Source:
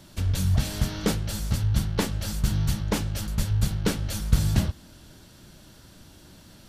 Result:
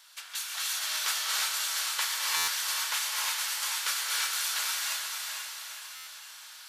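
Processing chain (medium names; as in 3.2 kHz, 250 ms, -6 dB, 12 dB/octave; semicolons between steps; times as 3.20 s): high-pass 1.1 kHz 24 dB/octave; echo that smears into a reverb 458 ms, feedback 50%, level -4 dB; gated-style reverb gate 380 ms rising, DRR -3.5 dB; buffer glitch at 2.36/5.95 s, samples 512, times 9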